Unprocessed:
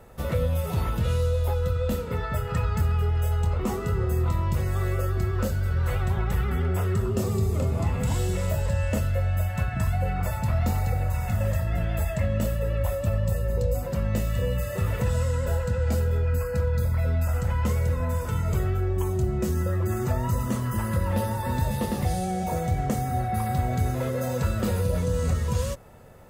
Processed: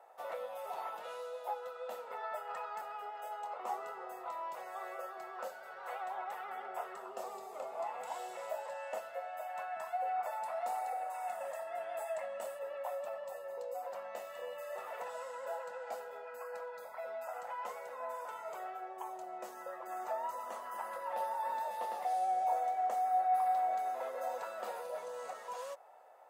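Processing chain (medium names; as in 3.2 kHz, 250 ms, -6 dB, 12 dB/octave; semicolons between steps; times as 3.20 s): 10.43–12.59 s: peaking EQ 9 kHz +11 dB 0.41 oct; ladder high-pass 660 Hz, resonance 60%; treble shelf 2.3 kHz -9 dB; trim +2 dB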